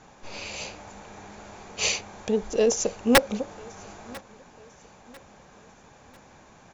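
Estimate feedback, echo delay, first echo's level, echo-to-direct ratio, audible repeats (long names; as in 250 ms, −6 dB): 41%, 996 ms, −24.0 dB, −23.0 dB, 2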